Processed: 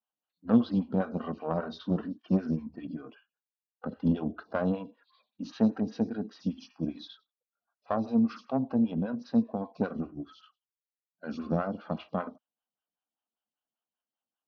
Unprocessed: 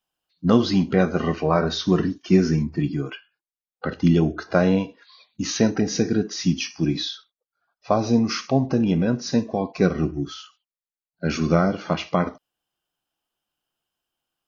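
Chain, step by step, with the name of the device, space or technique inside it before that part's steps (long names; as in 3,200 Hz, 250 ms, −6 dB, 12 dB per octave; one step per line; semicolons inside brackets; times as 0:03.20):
dynamic equaliser 2,100 Hz, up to −4 dB, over −41 dBFS, Q 1.6
vibe pedal into a guitar amplifier (phaser with staggered stages 5.1 Hz; tube saturation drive 10 dB, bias 0.75; loudspeaker in its box 86–4,000 Hz, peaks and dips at 140 Hz −5 dB, 230 Hz +7 dB, 370 Hz −9 dB, 2,100 Hz −9 dB)
level −4 dB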